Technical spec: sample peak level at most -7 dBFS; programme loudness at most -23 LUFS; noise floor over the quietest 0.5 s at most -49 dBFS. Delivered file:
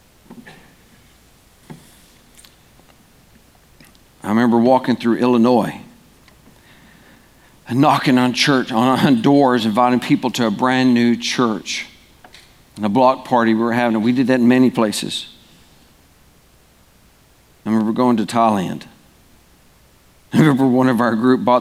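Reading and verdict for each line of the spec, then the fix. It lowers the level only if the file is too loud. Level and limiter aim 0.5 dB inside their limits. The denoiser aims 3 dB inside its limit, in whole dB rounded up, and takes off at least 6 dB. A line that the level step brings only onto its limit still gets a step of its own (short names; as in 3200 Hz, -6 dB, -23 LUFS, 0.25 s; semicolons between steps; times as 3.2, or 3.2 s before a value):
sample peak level -2.5 dBFS: fail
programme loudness -16.0 LUFS: fail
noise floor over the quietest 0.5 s -52 dBFS: OK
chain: gain -7.5 dB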